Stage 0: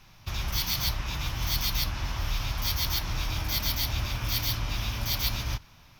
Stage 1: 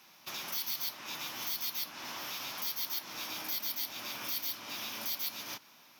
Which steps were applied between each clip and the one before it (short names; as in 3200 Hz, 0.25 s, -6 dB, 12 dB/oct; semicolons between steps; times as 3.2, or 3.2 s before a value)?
HPF 230 Hz 24 dB/oct; high shelf 8200 Hz +9.5 dB; compressor 2:1, threshold -36 dBFS, peak gain reduction 9.5 dB; gain -2.5 dB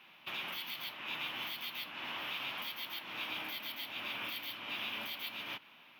resonant high shelf 4100 Hz -12 dB, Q 3; gain -1 dB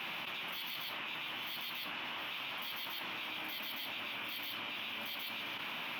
fast leveller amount 100%; gain -4 dB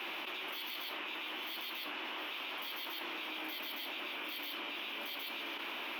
ladder high-pass 290 Hz, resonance 50%; gain +9 dB